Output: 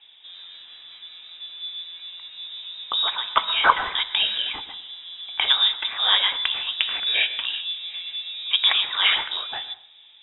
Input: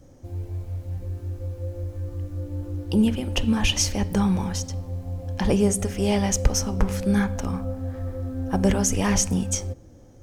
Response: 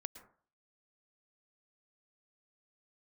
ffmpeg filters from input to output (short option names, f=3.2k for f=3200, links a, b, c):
-filter_complex "[0:a]highpass=570,lowpass=f=3.4k:t=q:w=0.5098,lowpass=f=3.4k:t=q:w=0.6013,lowpass=f=3.4k:t=q:w=0.9,lowpass=f=3.4k:t=q:w=2.563,afreqshift=-4000,asplit=2[a][b];[1:a]atrim=start_sample=2205,asetrate=43659,aresample=44100[c];[b][c]afir=irnorm=-1:irlink=0,volume=4.5dB[d];[a][d]amix=inputs=2:normalize=0,volume=3.5dB"